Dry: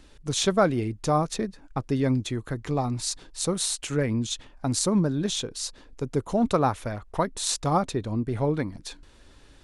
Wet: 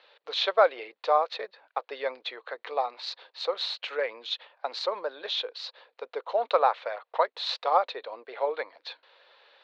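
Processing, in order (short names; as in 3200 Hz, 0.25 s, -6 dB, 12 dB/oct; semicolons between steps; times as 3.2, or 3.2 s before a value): Chebyshev band-pass 490–4200 Hz, order 4; gain +2.5 dB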